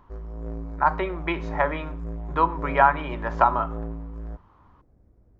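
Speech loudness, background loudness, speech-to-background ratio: -24.5 LUFS, -35.5 LUFS, 11.0 dB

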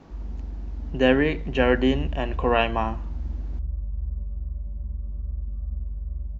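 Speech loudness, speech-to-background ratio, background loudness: -23.0 LUFS, 10.5 dB, -33.5 LUFS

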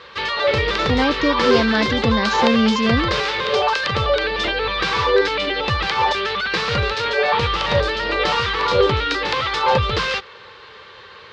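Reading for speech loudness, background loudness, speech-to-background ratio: -21.0 LUFS, -19.0 LUFS, -2.0 dB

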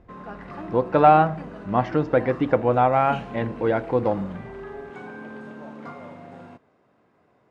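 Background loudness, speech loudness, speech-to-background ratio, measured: -39.0 LUFS, -21.5 LUFS, 17.5 dB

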